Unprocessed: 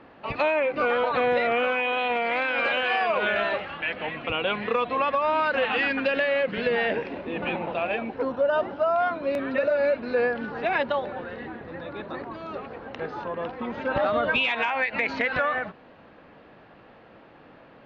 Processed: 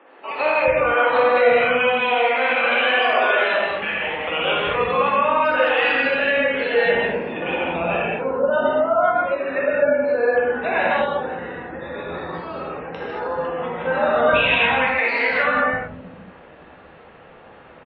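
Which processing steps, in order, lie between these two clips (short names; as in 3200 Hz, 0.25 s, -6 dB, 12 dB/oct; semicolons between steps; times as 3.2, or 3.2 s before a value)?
9.59–10.3 high shelf 3400 Hz -9 dB; spectral gate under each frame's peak -30 dB strong; bands offset in time highs, lows 0.37 s, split 290 Hz; non-linear reverb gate 0.26 s flat, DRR -6 dB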